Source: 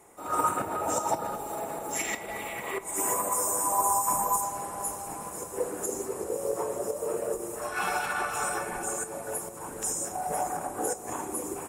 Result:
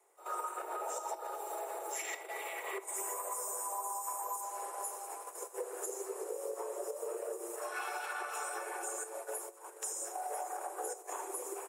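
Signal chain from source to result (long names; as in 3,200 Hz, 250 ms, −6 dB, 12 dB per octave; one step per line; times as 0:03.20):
noise gate −37 dBFS, range −10 dB
Butterworth high-pass 350 Hz 96 dB per octave
downward compressor, threshold −32 dBFS, peak gain reduction 11 dB
surface crackle 210 per second −65 dBFS
level −4 dB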